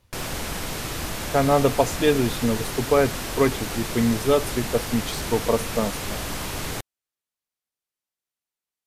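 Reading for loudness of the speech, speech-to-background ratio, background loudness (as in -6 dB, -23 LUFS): -23.5 LUFS, 6.5 dB, -30.0 LUFS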